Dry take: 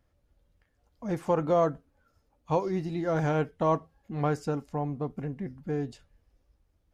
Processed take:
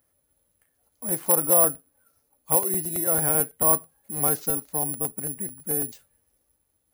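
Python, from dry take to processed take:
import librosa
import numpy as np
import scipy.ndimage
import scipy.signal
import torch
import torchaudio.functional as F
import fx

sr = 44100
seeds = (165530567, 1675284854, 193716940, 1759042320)

y = fx.highpass(x, sr, hz=210.0, slope=6)
y = (np.kron(y[::4], np.eye(4)[0]) * 4)[:len(y)]
y = fx.buffer_crackle(y, sr, first_s=0.76, period_s=0.11, block=64, kind='repeat')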